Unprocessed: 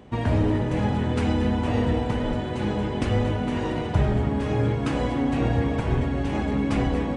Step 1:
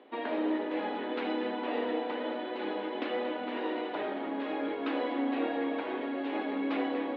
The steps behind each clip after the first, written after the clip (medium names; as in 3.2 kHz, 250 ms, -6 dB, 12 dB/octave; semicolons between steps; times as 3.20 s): Chebyshev band-pass 280–3900 Hz, order 4; hum notches 60/120/180/240/300/360/420 Hz; trim -4 dB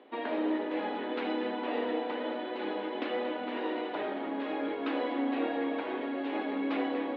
no audible change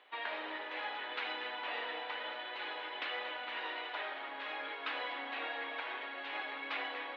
high-pass 1.3 kHz 12 dB/octave; trim +3 dB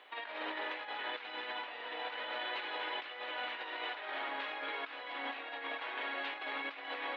compressor with a negative ratio -43 dBFS, ratio -0.5; trim +2.5 dB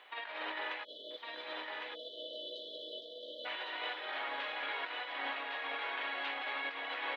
spectral selection erased 0.84–3.45 s, 670–3000 Hz; bass shelf 390 Hz -9 dB; delay 1107 ms -3.5 dB; trim +1 dB